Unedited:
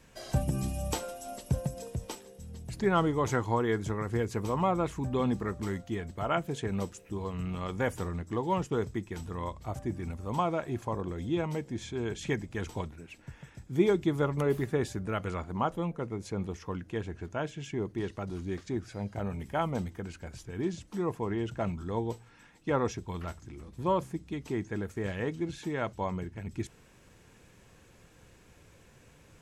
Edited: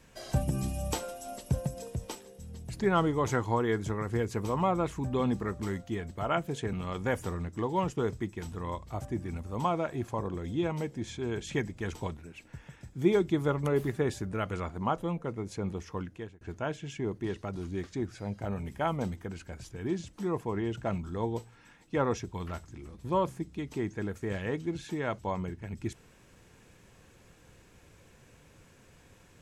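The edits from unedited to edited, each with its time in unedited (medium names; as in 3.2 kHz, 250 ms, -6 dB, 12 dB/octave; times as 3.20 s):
6.73–7.47 s: delete
16.75–17.15 s: fade out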